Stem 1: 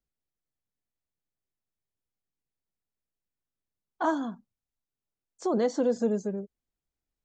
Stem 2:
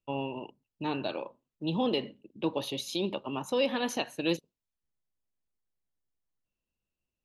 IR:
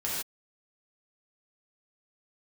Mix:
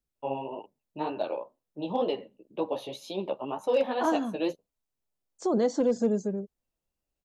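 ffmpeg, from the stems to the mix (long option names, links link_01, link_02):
-filter_complex "[0:a]equalizer=frequency=1700:width=0.63:gain=-4,volume=1.5dB[link_01];[1:a]equalizer=frequency=650:width=0.73:gain=14,flanger=delay=9.9:depth=6.1:regen=0:speed=2:shape=sinusoidal,adelay=150,volume=-5.5dB[link_02];[link_01][link_02]amix=inputs=2:normalize=0,asoftclip=type=hard:threshold=-17dB"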